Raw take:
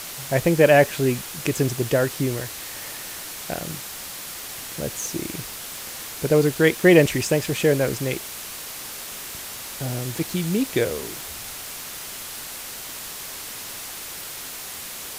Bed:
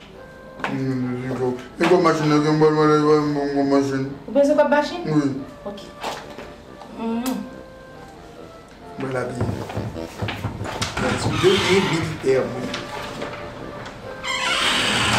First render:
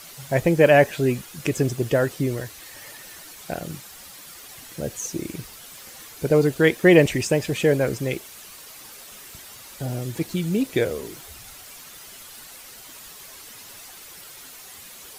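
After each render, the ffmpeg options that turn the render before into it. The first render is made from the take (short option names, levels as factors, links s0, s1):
-af "afftdn=nr=10:nf=-35"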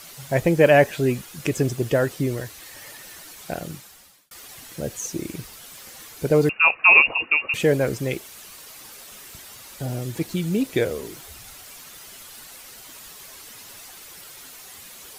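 -filter_complex "[0:a]asettb=1/sr,asplit=3[s0][s1][s2];[s0]atrim=end=6.494[s3];[s1]atrim=start=6.49:end=7.54,asetpts=PTS-STARTPTS,afade=t=in:d=0.004:c=qsin,afade=t=out:st=1.046:d=0.004:c=qsin,lowpass=f=2500:t=q:w=0.5098,lowpass=f=2500:t=q:w=0.6013,lowpass=f=2500:t=q:w=0.9,lowpass=f=2500:t=q:w=2.563,afreqshift=-2900[s4];[s2]atrim=start=7.536[s5];[s3][s4]acrossfade=d=0.004:c1=hsin:c2=qsin[s6];[s6][s5]acrossfade=d=0.004:c1=qsin:c2=hsin,asplit=2[s7][s8];[s7]atrim=end=4.31,asetpts=PTS-STARTPTS,afade=t=out:st=3.62:d=0.69[s9];[s8]atrim=start=4.31,asetpts=PTS-STARTPTS,afade=t=in:d=0.004:c=hsin[s10];[s9][s10]concat=n=2:v=0:a=1"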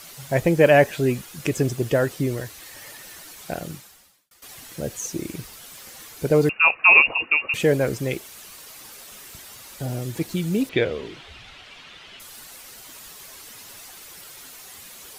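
-filter_complex "[0:a]asettb=1/sr,asplit=3[s0][s1][s2];[s0]atrim=end=10.694[s3];[s1]atrim=start=10.69:end=12.2,asetpts=PTS-STARTPTS,afade=t=in:d=0.004:c=qsin,afade=t=out:st=1.506:d=0.004:c=qsin,lowpass=f=3100:t=q:w=2[s4];[s2]atrim=start=12.196[s5];[s3][s4]acrossfade=d=0.004:c1=hsin:c2=qsin[s6];[s6][s5]acrossfade=d=0.004:c1=qsin:c2=hsin,asplit=2[s7][s8];[s7]atrim=end=4.42,asetpts=PTS-STARTPTS,afade=t=out:st=3.72:d=0.7:silence=0.149624[s9];[s8]atrim=start=4.42,asetpts=PTS-STARTPTS,afade=t=in:d=0.004:c=hsin:silence=0.149624[s10];[s9][s10]concat=n=2:v=0:a=1"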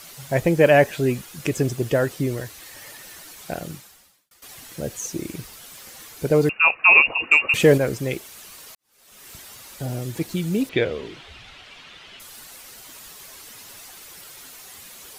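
-filter_complex "[0:a]asettb=1/sr,asplit=3[s0][s1][s2];[s0]atrim=end=7.234[s3];[s1]atrim=start=7.23:end=7.78,asetpts=PTS-STARTPTS,afade=t=in:d=0.004:c=qsin,afade=t=out:st=0.546:d=0.004:c=qsin,acontrast=32[s4];[s2]atrim=start=7.776[s5];[s3][s4]acrossfade=d=0.004:c1=hsin:c2=qsin[s6];[s6][s5]acrossfade=d=0.004:c1=qsin:c2=hsin,asplit=2[s7][s8];[s7]atrim=end=8.75,asetpts=PTS-STARTPTS,afade=t=out:st=8.746:d=0.004:c=hsin[s9];[s8]atrim=start=8.75,asetpts=PTS-STARTPTS,afade=t=in:d=0.56:c=qua[s10];[s9][s10]concat=n=2:v=0:a=1"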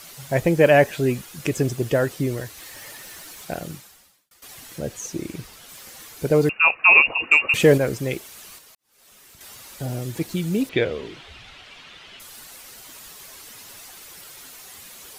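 -filter_complex "[0:a]asettb=1/sr,asplit=3[s0][s1][s2];[s0]atrim=end=2.574[s3];[s1]atrim=start=2.57:end=3.45,asetpts=PTS-STARTPTS,afade=t=in:d=0.004:c=qsin,afade=t=out:st=0.876:d=0.004:c=qsin,aeval=exprs='val(0)+0.5*0.00355*sgn(val(0))':c=same[s4];[s2]atrim=start=3.446[s5];[s3][s4]acrossfade=d=0.004:c1=hsin:c2=qsin[s6];[s6][s5]acrossfade=d=0.004:c1=qsin:c2=hsin,asettb=1/sr,asplit=3[s7][s8][s9];[s7]atrim=end=4.784[s10];[s8]atrim=start=4.78:end=5.69,asetpts=PTS-STARTPTS,afade=t=in:d=0.004:c=qsin,afade=t=out:st=0.906:d=0.004:c=qsin,highshelf=f=7200:g=-6[s11];[s9]atrim=start=5.686[s12];[s10][s11]acrossfade=d=0.004:c1=hsin:c2=qsin[s13];[s13][s12]acrossfade=d=0.004:c1=qsin:c2=hsin,asettb=1/sr,asplit=3[s14][s15][s16];[s14]atrim=end=8.584[s17];[s15]atrim=start=8.58:end=9.41,asetpts=PTS-STARTPTS,afade=t=in:d=0.004:c=qsin,afade=t=out:st=0.826:d=0.004:c=qsin,acompressor=threshold=0.00398:ratio=3:attack=3.2:release=140:knee=1:detection=peak[s18];[s16]atrim=start=9.406[s19];[s17][s18]acrossfade=d=0.004:c1=hsin:c2=qsin[s20];[s20][s19]acrossfade=d=0.004:c1=qsin:c2=hsin"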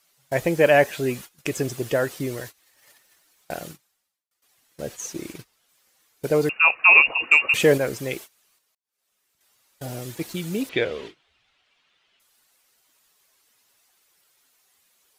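-af "lowshelf=f=270:g=-8.5,agate=range=0.0794:threshold=0.0141:ratio=16:detection=peak"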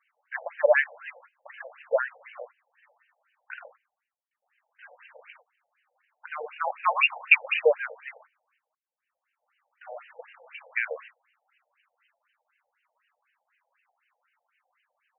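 -filter_complex "[0:a]asplit=2[s0][s1];[s1]asoftclip=type=tanh:threshold=0.141,volume=0.282[s2];[s0][s2]amix=inputs=2:normalize=0,afftfilt=real='re*between(b*sr/1024,620*pow(2200/620,0.5+0.5*sin(2*PI*4*pts/sr))/1.41,620*pow(2200/620,0.5+0.5*sin(2*PI*4*pts/sr))*1.41)':imag='im*between(b*sr/1024,620*pow(2200/620,0.5+0.5*sin(2*PI*4*pts/sr))/1.41,620*pow(2200/620,0.5+0.5*sin(2*PI*4*pts/sr))*1.41)':win_size=1024:overlap=0.75"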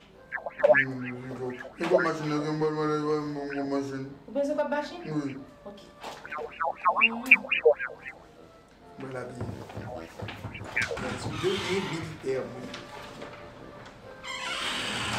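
-filter_complex "[1:a]volume=0.251[s0];[0:a][s0]amix=inputs=2:normalize=0"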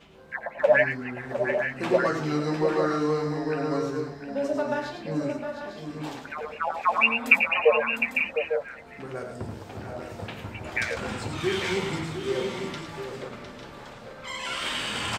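-filter_complex "[0:a]asplit=2[s0][s1];[s1]adelay=13,volume=0.251[s2];[s0][s2]amix=inputs=2:normalize=0,aecho=1:1:89|107|706|851|890:0.251|0.376|0.355|0.335|0.266"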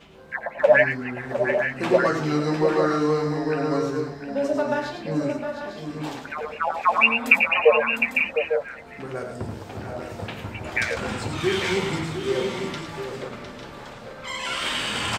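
-af "volume=1.5,alimiter=limit=0.794:level=0:latency=1"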